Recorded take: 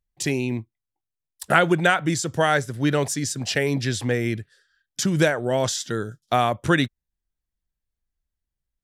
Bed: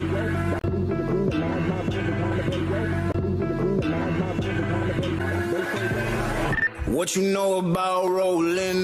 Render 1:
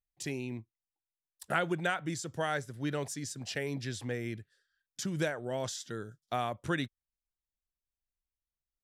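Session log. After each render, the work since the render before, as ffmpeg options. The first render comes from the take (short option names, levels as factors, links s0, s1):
-af "volume=0.224"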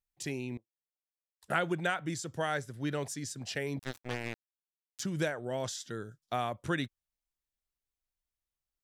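-filter_complex "[0:a]asettb=1/sr,asplit=3[s0][s1][s2];[s0]atrim=end=0.574[s3];[s1]atrim=start=0.57:end=1.43,asetpts=PTS-STARTPTS,afade=t=in:d=0.004:c=qsin,afade=t=out:st=0.856:d=0.004:c=qsin,bandpass=f=530:t=q:w=5.7[s4];[s2]atrim=start=1.426[s5];[s3][s4]acrossfade=d=0.004:c1=hsin:c2=qsin[s6];[s6][s5]acrossfade=d=0.004:c1=qsin:c2=hsin,asettb=1/sr,asplit=3[s7][s8][s9];[s7]atrim=end=3.794[s10];[s8]atrim=start=3.79:end=5,asetpts=PTS-STARTPTS,afade=t=in:d=0.004:c=qsin,afade=t=out:st=1.206:d=0.004:c=qsin,acrusher=bits=4:mix=0:aa=0.5[s11];[s9]atrim=start=4.996[s12];[s10][s11]acrossfade=d=0.004:c1=hsin:c2=qsin[s13];[s13][s12]acrossfade=d=0.004:c1=qsin:c2=hsin"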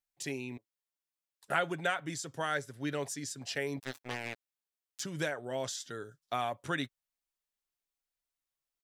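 -af "lowshelf=f=180:g=-11.5,aecho=1:1:7.2:0.37"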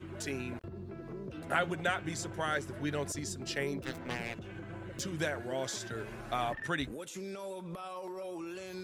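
-filter_complex "[1:a]volume=0.106[s0];[0:a][s0]amix=inputs=2:normalize=0"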